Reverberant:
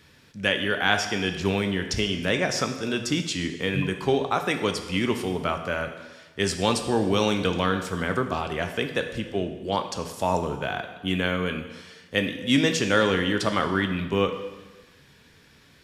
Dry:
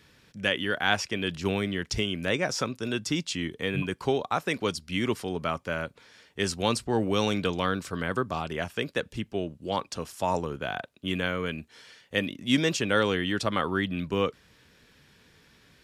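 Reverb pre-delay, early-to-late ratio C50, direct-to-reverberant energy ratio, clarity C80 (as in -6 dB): 6 ms, 8.5 dB, 6.0 dB, 10.0 dB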